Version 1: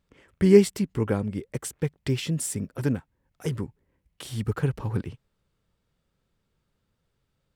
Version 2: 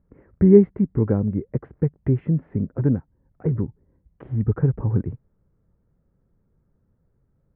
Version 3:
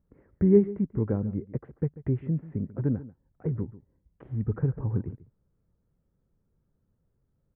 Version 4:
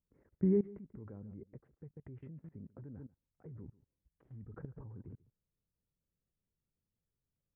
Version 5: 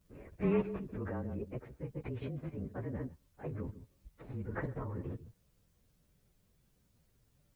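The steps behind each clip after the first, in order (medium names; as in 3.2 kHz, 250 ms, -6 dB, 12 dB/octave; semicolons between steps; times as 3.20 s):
steep low-pass 2 kHz 36 dB/octave; tilt shelf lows +9.5 dB, about 890 Hz; in parallel at -2 dB: compression, threshold -23 dBFS, peak gain reduction 19 dB; on the sum: trim -4.5 dB
echo from a far wall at 24 m, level -17 dB; trim -7 dB
level held to a coarse grid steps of 21 dB; trim -6 dB
frequency axis rescaled in octaves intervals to 109%; dynamic bell 1.2 kHz, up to +6 dB, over -60 dBFS, Q 0.98; spectrum-flattening compressor 2:1; trim +1 dB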